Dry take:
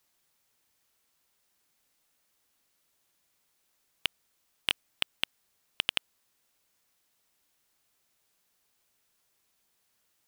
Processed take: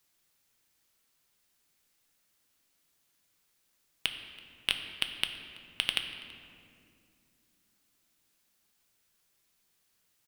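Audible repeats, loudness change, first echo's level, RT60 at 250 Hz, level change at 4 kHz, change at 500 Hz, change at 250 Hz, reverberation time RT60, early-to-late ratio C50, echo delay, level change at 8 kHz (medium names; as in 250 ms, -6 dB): 1, -0.5 dB, -22.5 dB, 4.2 s, +0.5 dB, -1.5 dB, +1.0 dB, 2.4 s, 7.5 dB, 330 ms, +0.5 dB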